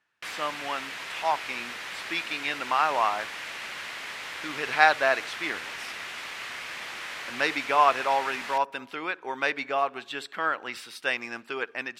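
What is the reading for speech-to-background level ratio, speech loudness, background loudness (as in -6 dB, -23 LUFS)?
8.0 dB, -27.5 LUFS, -35.5 LUFS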